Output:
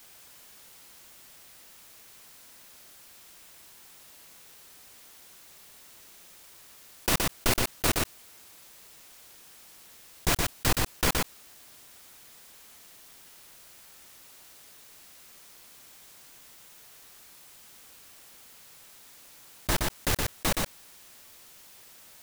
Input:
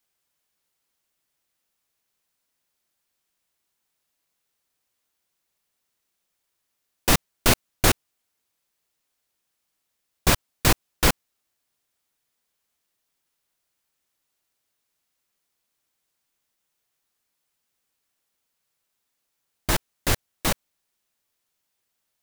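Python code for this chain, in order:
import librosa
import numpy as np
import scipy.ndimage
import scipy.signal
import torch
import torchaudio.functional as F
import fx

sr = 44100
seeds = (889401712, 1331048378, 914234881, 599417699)

y = np.minimum(x, 2.0 * 10.0 ** (-16.5 / 20.0) - x)
y = y + 10.0 ** (-6.0 / 20.0) * np.pad(y, (int(120 * sr / 1000.0), 0))[:len(y)]
y = fx.env_flatten(y, sr, amount_pct=50)
y = y * 10.0 ** (-6.5 / 20.0)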